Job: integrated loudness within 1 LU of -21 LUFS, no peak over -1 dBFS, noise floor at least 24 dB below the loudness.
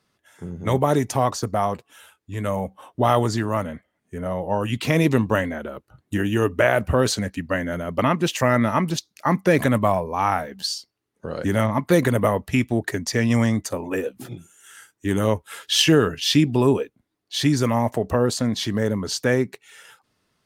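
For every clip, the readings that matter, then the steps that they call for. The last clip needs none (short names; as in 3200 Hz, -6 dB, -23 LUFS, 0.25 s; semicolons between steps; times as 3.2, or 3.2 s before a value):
loudness -22.0 LUFS; peak -4.5 dBFS; loudness target -21.0 LUFS
-> gain +1 dB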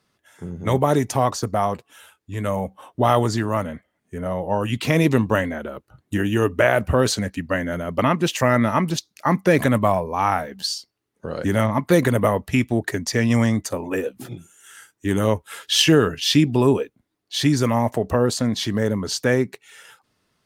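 loudness -21.0 LUFS; peak -3.5 dBFS; noise floor -74 dBFS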